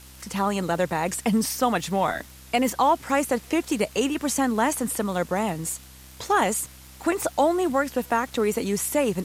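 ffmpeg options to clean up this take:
-af "adeclick=t=4,bandreject=f=64.7:t=h:w=4,bandreject=f=129.4:t=h:w=4,bandreject=f=194.1:t=h:w=4,bandreject=f=258.8:t=h:w=4,bandreject=f=323.5:t=h:w=4,afwtdn=0.004"

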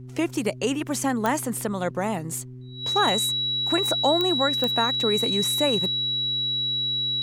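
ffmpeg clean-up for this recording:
-af "adeclick=t=4,bandreject=f=126.5:t=h:w=4,bandreject=f=253:t=h:w=4,bandreject=f=379.5:t=h:w=4,bandreject=f=3900:w=30,agate=range=0.0891:threshold=0.0316"

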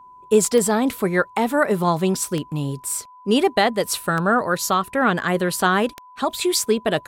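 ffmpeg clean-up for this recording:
-af "adeclick=t=4,bandreject=f=1000:w=30"

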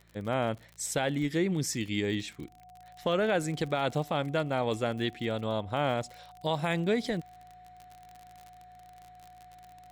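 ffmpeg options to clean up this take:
-af "adeclick=t=4,bandreject=f=56:t=h:w=4,bandreject=f=112:t=h:w=4,bandreject=f=168:t=h:w=4,bandreject=f=730:w=30"

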